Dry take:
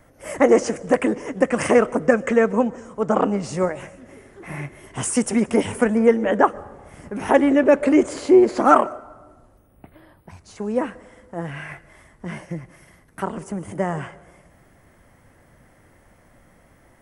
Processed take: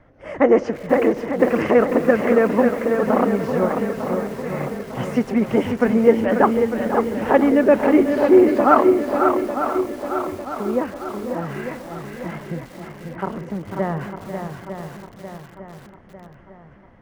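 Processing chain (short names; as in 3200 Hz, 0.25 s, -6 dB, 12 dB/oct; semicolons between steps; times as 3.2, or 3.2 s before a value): air absorption 270 m; swung echo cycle 0.901 s, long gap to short 1.5:1, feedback 47%, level -6.5 dB; lo-fi delay 0.492 s, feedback 55%, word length 6-bit, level -11 dB; gain +1 dB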